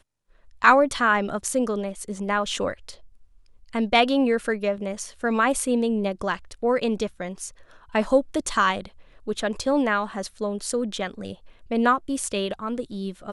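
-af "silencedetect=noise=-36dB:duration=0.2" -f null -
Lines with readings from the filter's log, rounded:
silence_start: 0.00
silence_end: 0.62 | silence_duration: 0.62
silence_start: 2.94
silence_end: 3.73 | silence_duration: 0.79
silence_start: 7.49
silence_end: 7.94 | silence_duration: 0.45
silence_start: 8.87
silence_end: 9.27 | silence_duration: 0.39
silence_start: 11.34
silence_end: 11.71 | silence_duration: 0.37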